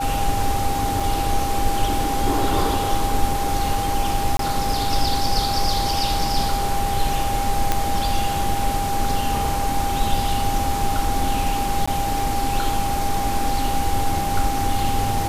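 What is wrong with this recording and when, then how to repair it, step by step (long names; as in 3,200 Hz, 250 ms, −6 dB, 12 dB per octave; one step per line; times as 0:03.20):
whistle 800 Hz −23 dBFS
0:01.00: drop-out 3.1 ms
0:04.37–0:04.39: drop-out 23 ms
0:07.72: click −4 dBFS
0:11.86–0:11.88: drop-out 15 ms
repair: click removal
notch filter 800 Hz, Q 30
repair the gap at 0:01.00, 3.1 ms
repair the gap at 0:04.37, 23 ms
repair the gap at 0:11.86, 15 ms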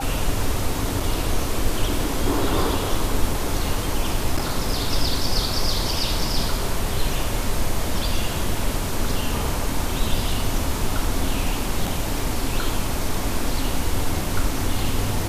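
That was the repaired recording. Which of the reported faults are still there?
none of them is left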